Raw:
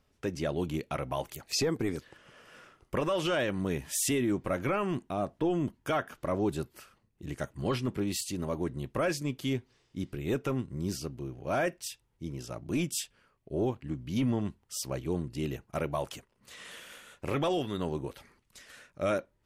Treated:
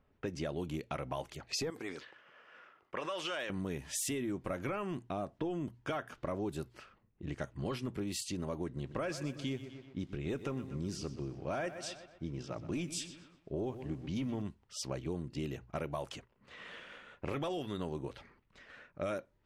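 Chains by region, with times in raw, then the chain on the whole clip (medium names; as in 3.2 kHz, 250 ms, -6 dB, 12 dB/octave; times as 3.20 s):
1.70–3.50 s: high-pass 1 kHz 6 dB/octave + decay stretcher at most 92 dB/s
8.66–14.42 s: low-pass 8.7 kHz + bit-crushed delay 124 ms, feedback 55%, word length 9-bit, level -14 dB
whole clip: hum notches 60/120 Hz; level-controlled noise filter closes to 2 kHz, open at -27.5 dBFS; compression 4:1, threshold -35 dBFS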